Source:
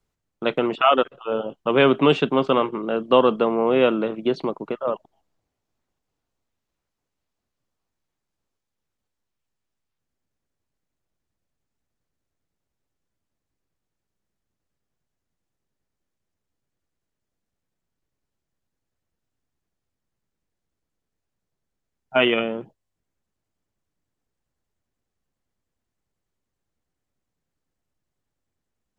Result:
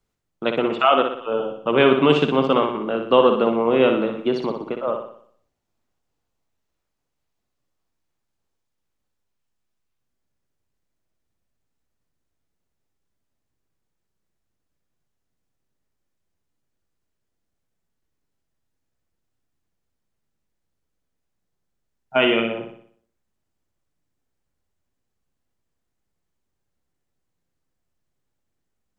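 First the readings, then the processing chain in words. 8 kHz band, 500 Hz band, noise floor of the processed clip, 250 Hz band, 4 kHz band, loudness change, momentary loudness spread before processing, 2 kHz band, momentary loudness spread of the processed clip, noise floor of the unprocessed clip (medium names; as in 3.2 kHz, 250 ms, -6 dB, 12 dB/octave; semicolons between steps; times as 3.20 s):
no reading, +1.5 dB, -77 dBFS, +1.5 dB, +1.0 dB, +1.5 dB, 10 LU, +1.0 dB, 11 LU, -82 dBFS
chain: flutter echo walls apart 10.4 m, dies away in 0.59 s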